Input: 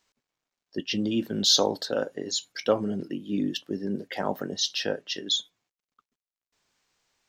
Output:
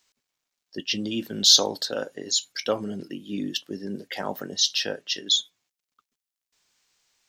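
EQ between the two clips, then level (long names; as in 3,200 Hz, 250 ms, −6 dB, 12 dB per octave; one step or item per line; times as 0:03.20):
high-shelf EQ 2,100 Hz +10 dB
−3.0 dB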